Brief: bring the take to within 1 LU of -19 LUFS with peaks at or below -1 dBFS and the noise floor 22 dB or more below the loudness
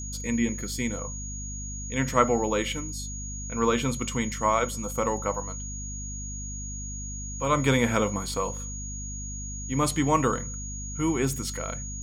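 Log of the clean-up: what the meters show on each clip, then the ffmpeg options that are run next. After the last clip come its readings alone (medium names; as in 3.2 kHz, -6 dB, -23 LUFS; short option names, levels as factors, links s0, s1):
hum 50 Hz; highest harmonic 250 Hz; hum level -35 dBFS; steady tone 6.7 kHz; tone level -37 dBFS; loudness -28.5 LUFS; peak level -5.5 dBFS; loudness target -19.0 LUFS
-> -af "bandreject=f=50:t=h:w=6,bandreject=f=100:t=h:w=6,bandreject=f=150:t=h:w=6,bandreject=f=200:t=h:w=6,bandreject=f=250:t=h:w=6"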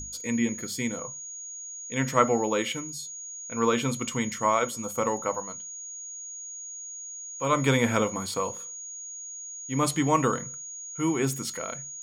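hum not found; steady tone 6.7 kHz; tone level -37 dBFS
-> -af "bandreject=f=6700:w=30"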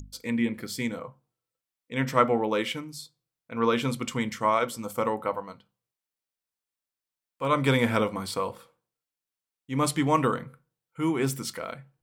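steady tone not found; loudness -27.5 LUFS; peak level -6.0 dBFS; loudness target -19.0 LUFS
-> -af "volume=2.66,alimiter=limit=0.891:level=0:latency=1"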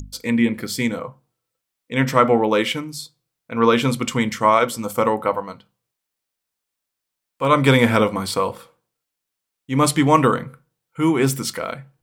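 loudness -19.5 LUFS; peak level -1.0 dBFS; noise floor -82 dBFS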